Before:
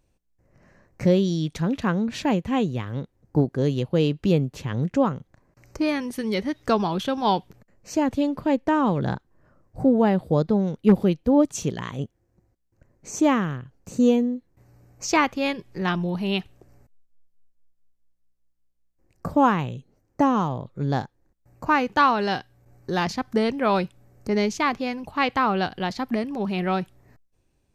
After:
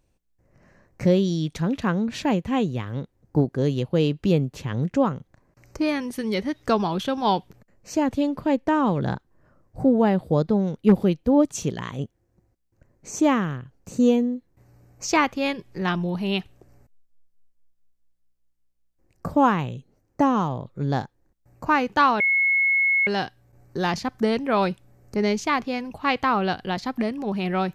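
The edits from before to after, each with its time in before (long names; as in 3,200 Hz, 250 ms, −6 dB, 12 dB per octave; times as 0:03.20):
0:22.20: insert tone 2,180 Hz −17 dBFS 0.87 s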